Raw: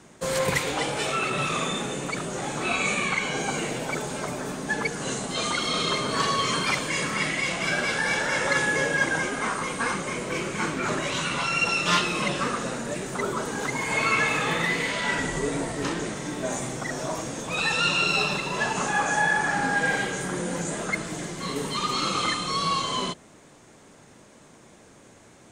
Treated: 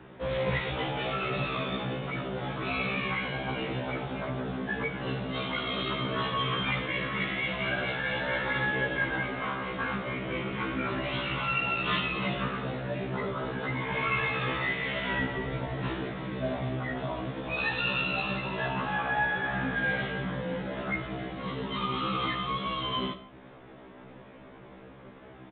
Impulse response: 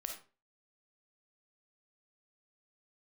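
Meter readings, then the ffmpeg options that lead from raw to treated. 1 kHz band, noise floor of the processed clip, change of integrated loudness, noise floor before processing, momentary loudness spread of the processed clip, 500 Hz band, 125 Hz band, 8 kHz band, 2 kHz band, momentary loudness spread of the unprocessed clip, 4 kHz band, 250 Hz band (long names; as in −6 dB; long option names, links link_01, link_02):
−5.5 dB, −49 dBFS, −5.0 dB, −52 dBFS, 8 LU, −4.0 dB, 0.0 dB, below −40 dB, −5.0 dB, 8 LU, −6.5 dB, −3.0 dB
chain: -filter_complex "[0:a]aemphasis=mode=reproduction:type=75fm,asplit=2[link_01][link_02];[1:a]atrim=start_sample=2205[link_03];[link_02][link_03]afir=irnorm=-1:irlink=0,volume=2.5dB[link_04];[link_01][link_04]amix=inputs=2:normalize=0,acrossover=split=130|3000[link_05][link_06][link_07];[link_06]acompressor=threshold=-45dB:ratio=1.5[link_08];[link_05][link_08][link_07]amix=inputs=3:normalize=0,aresample=8000,aresample=44100,afftfilt=real='re*1.73*eq(mod(b,3),0)':imag='im*1.73*eq(mod(b,3),0)':win_size=2048:overlap=0.75"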